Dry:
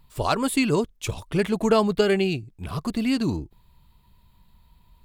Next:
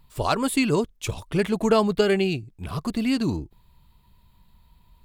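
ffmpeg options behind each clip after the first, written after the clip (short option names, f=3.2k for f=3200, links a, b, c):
-af anull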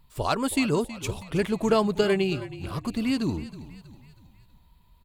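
-filter_complex "[0:a]asplit=5[a][b][c][d][e];[b]adelay=321,afreqshift=-38,volume=-15dB[f];[c]adelay=642,afreqshift=-76,volume=-21.4dB[g];[d]adelay=963,afreqshift=-114,volume=-27.8dB[h];[e]adelay=1284,afreqshift=-152,volume=-34.1dB[i];[a][f][g][h][i]amix=inputs=5:normalize=0,volume=-2.5dB"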